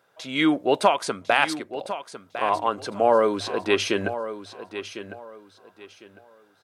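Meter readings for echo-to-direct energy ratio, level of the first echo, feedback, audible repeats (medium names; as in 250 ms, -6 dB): -11.5 dB, -12.0 dB, 25%, 2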